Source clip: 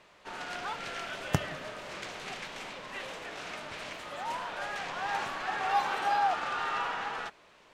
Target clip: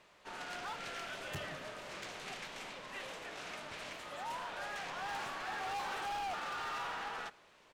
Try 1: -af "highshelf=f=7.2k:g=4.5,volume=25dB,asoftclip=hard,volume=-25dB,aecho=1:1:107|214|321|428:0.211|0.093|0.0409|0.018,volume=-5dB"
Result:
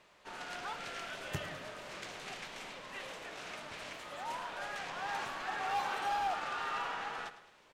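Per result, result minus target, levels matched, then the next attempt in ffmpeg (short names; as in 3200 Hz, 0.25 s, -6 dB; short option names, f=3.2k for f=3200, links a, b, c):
echo-to-direct +11 dB; overloaded stage: distortion -6 dB
-af "highshelf=f=7.2k:g=4.5,volume=25dB,asoftclip=hard,volume=-25dB,aecho=1:1:107|214|321:0.0596|0.0262|0.0115,volume=-5dB"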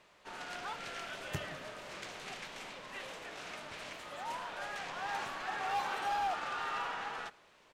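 overloaded stage: distortion -6 dB
-af "highshelf=f=7.2k:g=4.5,volume=32dB,asoftclip=hard,volume=-32dB,aecho=1:1:107|214|321:0.0596|0.0262|0.0115,volume=-5dB"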